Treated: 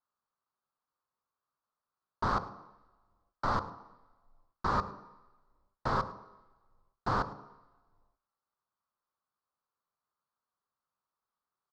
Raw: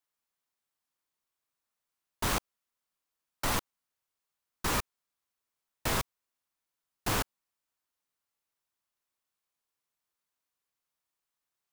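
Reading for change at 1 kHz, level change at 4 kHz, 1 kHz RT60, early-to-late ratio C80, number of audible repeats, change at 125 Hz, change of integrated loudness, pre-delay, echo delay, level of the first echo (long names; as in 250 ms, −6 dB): +4.5 dB, −11.5 dB, 1.2 s, 15.5 dB, 1, −0.5 dB, −1.0 dB, 3 ms, 106 ms, −19.5 dB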